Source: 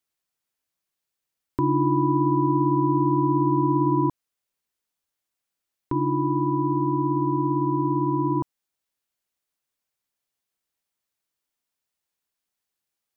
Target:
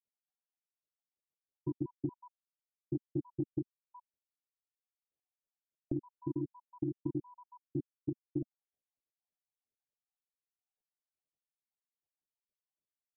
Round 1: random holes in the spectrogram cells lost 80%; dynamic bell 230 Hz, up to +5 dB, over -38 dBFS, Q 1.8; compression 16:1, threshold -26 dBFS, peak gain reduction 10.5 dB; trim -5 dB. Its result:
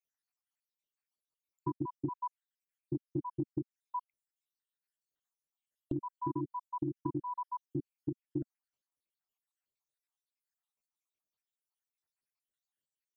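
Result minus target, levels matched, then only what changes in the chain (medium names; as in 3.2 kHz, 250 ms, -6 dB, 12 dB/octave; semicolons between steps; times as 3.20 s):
1 kHz band +16.5 dB
add after compression: steep low-pass 870 Hz 96 dB/octave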